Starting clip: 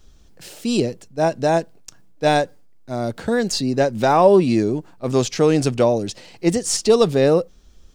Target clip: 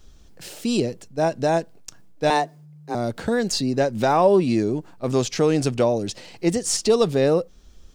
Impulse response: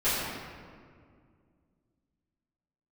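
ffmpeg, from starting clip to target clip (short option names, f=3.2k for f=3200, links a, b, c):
-filter_complex "[0:a]asplit=2[a][b];[b]acompressor=threshold=-24dB:ratio=6,volume=0.5dB[c];[a][c]amix=inputs=2:normalize=0,asettb=1/sr,asplit=3[d][e][f];[d]atrim=end=2.304[g];[e]atrim=start=2.3:end=2.95,asetpts=PTS-STARTPTS,afade=t=in:d=0.004:c=qsin,afade=t=out:st=0.646:d=0.004:c=qsin,afreqshift=150[h];[f]atrim=start=2.946[i];[g][h]acrossfade=d=0.004:c1=hsin:c2=qsin[j];[j][i]acrossfade=d=0.004:c1=qsin:c2=hsin,volume=-5.5dB"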